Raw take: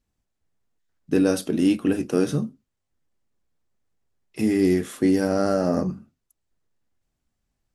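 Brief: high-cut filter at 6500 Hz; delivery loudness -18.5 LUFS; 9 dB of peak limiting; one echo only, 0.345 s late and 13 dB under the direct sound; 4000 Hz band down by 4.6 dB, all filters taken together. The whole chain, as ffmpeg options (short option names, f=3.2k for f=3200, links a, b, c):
-af "lowpass=6.5k,equalizer=f=4k:t=o:g=-5.5,alimiter=limit=-17dB:level=0:latency=1,aecho=1:1:345:0.224,volume=9dB"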